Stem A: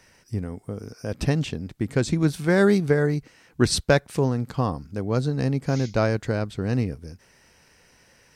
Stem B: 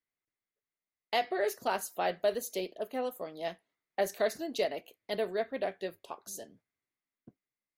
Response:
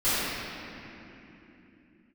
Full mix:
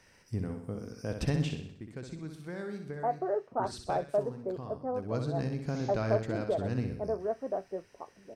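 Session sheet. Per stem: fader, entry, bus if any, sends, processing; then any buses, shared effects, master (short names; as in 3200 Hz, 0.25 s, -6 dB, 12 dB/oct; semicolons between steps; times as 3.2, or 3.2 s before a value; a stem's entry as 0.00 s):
1.44 s -5.5 dB -> 1.74 s -17.5 dB -> 4.84 s -17.5 dB -> 5.14 s -8.5 dB, 0.00 s, no send, echo send -6.5 dB, compressor 2:1, threshold -22 dBFS, peak gain reduction 6 dB; high shelf 8600 Hz -5 dB
0.0 dB, 1.90 s, no send, no echo send, steep low-pass 1300 Hz 36 dB/oct; low-pass opened by the level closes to 310 Hz, open at -28 dBFS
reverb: off
echo: feedback echo 63 ms, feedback 50%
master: dry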